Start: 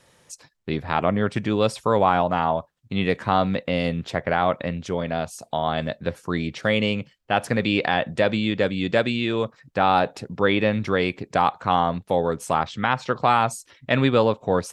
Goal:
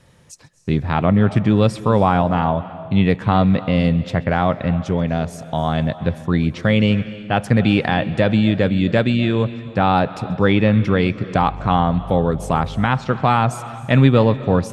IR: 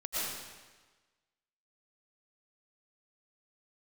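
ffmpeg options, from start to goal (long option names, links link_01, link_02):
-filter_complex "[0:a]asettb=1/sr,asplit=3[link_01][link_02][link_03];[link_01]atrim=end=11.404[link_04];[link_02]atrim=start=11.4:end=12.86,asetpts=PTS-STARTPTS,afade=type=in:duration=0.004:curve=qsin,afade=type=out:start_time=1.456:duration=0.004:curve=qsin,aeval=exprs='val(0)+0.00891*(sin(2*PI*50*n/s)+sin(2*PI*2*50*n/s)/2+sin(2*PI*3*50*n/s)/3+sin(2*PI*4*50*n/s)/4+sin(2*PI*5*50*n/s)/5)':channel_layout=same[link_05];[link_03]atrim=start=12.856[link_06];[link_04][link_05]acrossfade=duration=0.004:curve1=hsin:curve2=qsin[link_07];[link_07][link_06]acrossfade=duration=0.004:curve1=qsin:curve2=hsin,bass=frequency=250:gain=11,treble=frequency=4000:gain=-3,asplit=2[link_08][link_09];[1:a]atrim=start_sample=2205,adelay=133[link_10];[link_09][link_10]afir=irnorm=-1:irlink=0,volume=-20dB[link_11];[link_08][link_11]amix=inputs=2:normalize=0,volume=1.5dB"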